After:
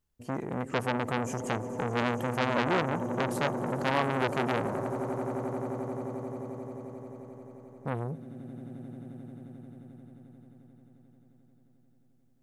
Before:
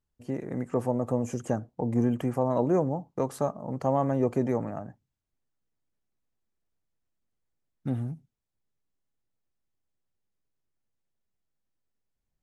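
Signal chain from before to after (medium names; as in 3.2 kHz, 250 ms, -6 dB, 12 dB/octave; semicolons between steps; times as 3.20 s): treble shelf 9.5 kHz +4.5 dB; on a send: echo with a slow build-up 88 ms, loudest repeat 8, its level -17 dB; on the sum: transformer saturation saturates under 1.9 kHz; trim +2.5 dB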